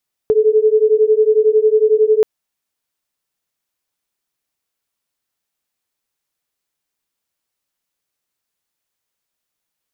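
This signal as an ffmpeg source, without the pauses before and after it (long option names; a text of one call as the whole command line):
ffmpeg -f lavfi -i "aevalsrc='0.237*(sin(2*PI*427*t)+sin(2*PI*438*t))':duration=1.93:sample_rate=44100" out.wav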